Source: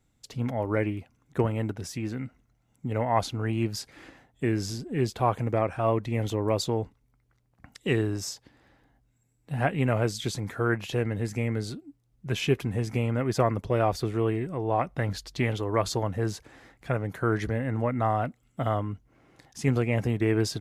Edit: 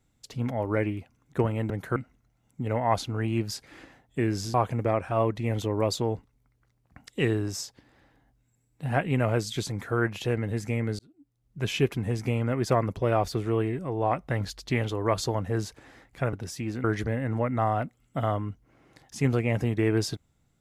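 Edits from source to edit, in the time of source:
0:01.70–0:02.21: swap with 0:17.01–0:17.27
0:04.79–0:05.22: remove
0:11.67–0:12.33: fade in

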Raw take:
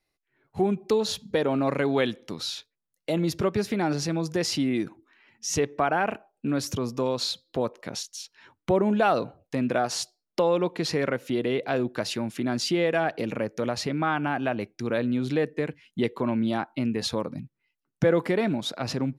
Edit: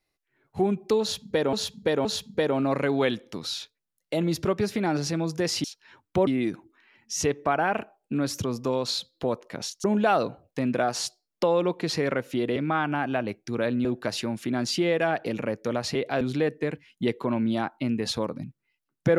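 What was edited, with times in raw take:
0:01.01–0:01.53: repeat, 3 plays
0:08.17–0:08.80: move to 0:04.60
0:11.52–0:11.78: swap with 0:13.88–0:15.17

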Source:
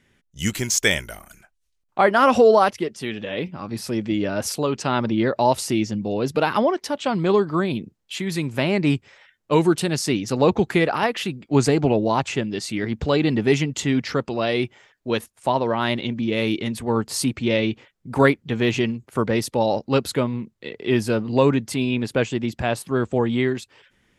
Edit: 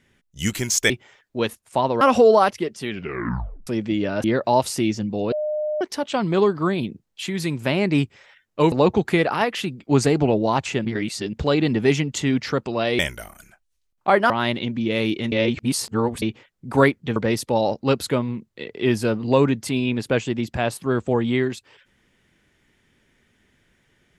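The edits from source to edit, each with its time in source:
0:00.90–0:02.21: swap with 0:14.61–0:15.72
0:03.10: tape stop 0.77 s
0:04.44–0:05.16: remove
0:06.24–0:06.73: beep over 607 Hz −21.5 dBFS
0:09.64–0:10.34: remove
0:12.47–0:12.95: reverse
0:16.74–0:17.64: reverse
0:18.58–0:19.21: remove

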